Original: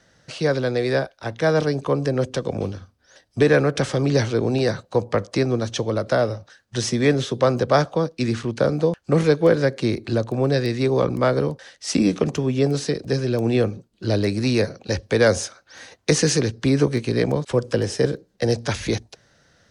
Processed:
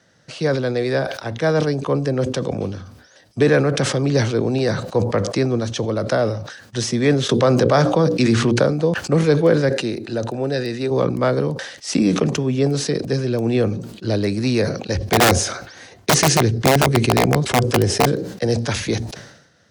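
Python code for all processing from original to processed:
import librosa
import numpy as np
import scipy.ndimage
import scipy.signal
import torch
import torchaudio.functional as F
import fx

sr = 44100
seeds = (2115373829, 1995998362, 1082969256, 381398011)

y = fx.chain(x, sr, fx.hum_notches(base_hz=60, count=9),
    fx.env_flatten(amount_pct=70), at=(7.29, 8.63))
y = fx.chain(y, sr, fx.low_shelf(hz=390.0, db=-5.0),
    fx.notch_comb(f0_hz=1100.0), at=(9.69, 10.91))
y = fx.chain(y, sr, fx.low_shelf(hz=130.0, db=11.5),
    fx.overflow_wrap(gain_db=8.0),
    fx.small_body(hz=(380.0, 710.0, 2100.0), ring_ms=45, db=6), at=(14.95, 18.06))
y = scipy.signal.sosfilt(scipy.signal.butter(2, 110.0, 'highpass', fs=sr, output='sos'), y)
y = fx.low_shelf(y, sr, hz=200.0, db=4.0)
y = fx.sustainer(y, sr, db_per_s=68.0)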